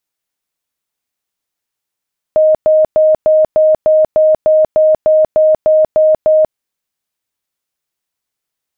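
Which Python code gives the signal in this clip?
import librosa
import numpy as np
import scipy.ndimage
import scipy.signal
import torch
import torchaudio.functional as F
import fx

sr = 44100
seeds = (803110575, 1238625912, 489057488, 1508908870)

y = fx.tone_burst(sr, hz=623.0, cycles=117, every_s=0.3, bursts=14, level_db=-5.5)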